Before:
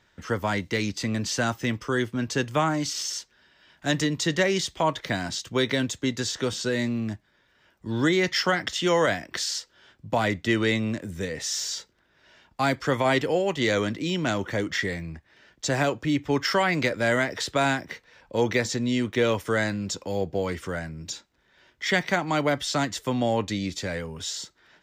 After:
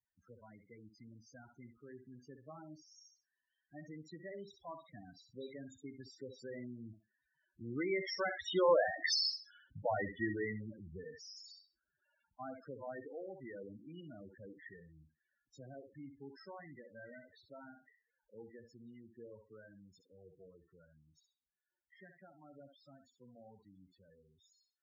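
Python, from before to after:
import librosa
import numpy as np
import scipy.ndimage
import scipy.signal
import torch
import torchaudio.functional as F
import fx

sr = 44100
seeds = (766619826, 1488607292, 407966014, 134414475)

p1 = fx.doppler_pass(x, sr, speed_mps=11, closest_m=1.7, pass_at_s=9.13)
p2 = fx.dynamic_eq(p1, sr, hz=180.0, q=0.83, threshold_db=-55.0, ratio=4.0, max_db=-5)
p3 = (np.mod(10.0 ** (30.0 / 20.0) * p2 + 1.0, 2.0) - 1.0) / 10.0 ** (30.0 / 20.0)
p4 = p2 + (p3 * 10.0 ** (-9.0 / 20.0))
p5 = fx.echo_thinned(p4, sr, ms=65, feedback_pct=27, hz=200.0, wet_db=-7.0)
p6 = fx.spec_topn(p5, sr, count=8)
y = p6 * 10.0 ** (4.0 / 20.0)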